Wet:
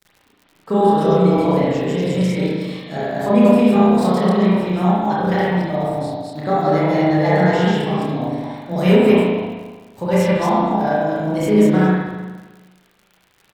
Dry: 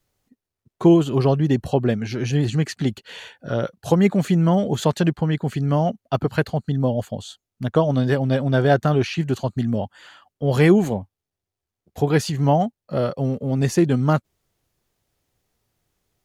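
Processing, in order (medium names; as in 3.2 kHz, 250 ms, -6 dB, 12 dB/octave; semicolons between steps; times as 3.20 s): chunks repeated in reverse 161 ms, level 0 dB; bass shelf 72 Hz -7.5 dB; doubling 34 ms -4 dB; tape speed +20%; crackle 79 per s -31 dBFS; spring tank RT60 1.3 s, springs 33/38 ms, chirp 40 ms, DRR -6 dB; trim -7 dB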